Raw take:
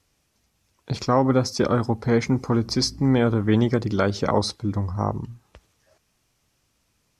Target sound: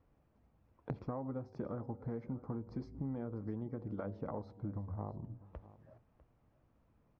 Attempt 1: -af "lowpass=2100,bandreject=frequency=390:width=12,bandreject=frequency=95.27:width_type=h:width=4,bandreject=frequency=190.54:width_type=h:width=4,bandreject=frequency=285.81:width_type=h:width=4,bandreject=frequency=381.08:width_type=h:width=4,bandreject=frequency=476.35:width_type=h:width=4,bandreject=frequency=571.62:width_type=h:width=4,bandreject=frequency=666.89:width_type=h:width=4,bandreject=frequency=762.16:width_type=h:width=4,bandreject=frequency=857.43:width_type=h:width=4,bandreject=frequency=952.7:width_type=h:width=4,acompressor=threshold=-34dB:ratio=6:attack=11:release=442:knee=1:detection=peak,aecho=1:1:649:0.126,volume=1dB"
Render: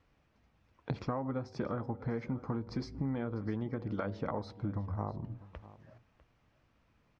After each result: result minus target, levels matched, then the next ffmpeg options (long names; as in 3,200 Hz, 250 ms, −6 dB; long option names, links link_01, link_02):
2,000 Hz band +7.5 dB; downward compressor: peak gain reduction −5 dB
-af "lowpass=920,bandreject=frequency=390:width=12,bandreject=frequency=95.27:width_type=h:width=4,bandreject=frequency=190.54:width_type=h:width=4,bandreject=frequency=285.81:width_type=h:width=4,bandreject=frequency=381.08:width_type=h:width=4,bandreject=frequency=476.35:width_type=h:width=4,bandreject=frequency=571.62:width_type=h:width=4,bandreject=frequency=666.89:width_type=h:width=4,bandreject=frequency=762.16:width_type=h:width=4,bandreject=frequency=857.43:width_type=h:width=4,bandreject=frequency=952.7:width_type=h:width=4,acompressor=threshold=-34dB:ratio=6:attack=11:release=442:knee=1:detection=peak,aecho=1:1:649:0.126,volume=1dB"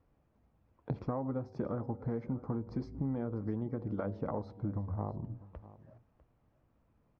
downward compressor: peak gain reduction −5 dB
-af "lowpass=920,bandreject=frequency=390:width=12,bandreject=frequency=95.27:width_type=h:width=4,bandreject=frequency=190.54:width_type=h:width=4,bandreject=frequency=285.81:width_type=h:width=4,bandreject=frequency=381.08:width_type=h:width=4,bandreject=frequency=476.35:width_type=h:width=4,bandreject=frequency=571.62:width_type=h:width=4,bandreject=frequency=666.89:width_type=h:width=4,bandreject=frequency=762.16:width_type=h:width=4,bandreject=frequency=857.43:width_type=h:width=4,bandreject=frequency=952.7:width_type=h:width=4,acompressor=threshold=-40dB:ratio=6:attack=11:release=442:knee=1:detection=peak,aecho=1:1:649:0.126,volume=1dB"